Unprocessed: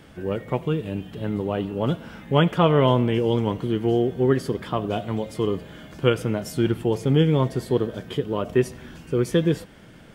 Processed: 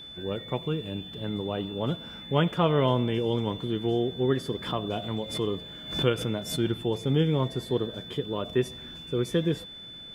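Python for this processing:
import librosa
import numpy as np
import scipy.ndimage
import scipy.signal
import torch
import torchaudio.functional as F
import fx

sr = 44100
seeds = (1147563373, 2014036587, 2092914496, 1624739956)

y = x + 10.0 ** (-36.0 / 20.0) * np.sin(2.0 * np.pi * 3500.0 * np.arange(len(x)) / sr)
y = fx.pre_swell(y, sr, db_per_s=98.0, at=(4.5, 6.55), fade=0.02)
y = y * 10.0 ** (-5.5 / 20.0)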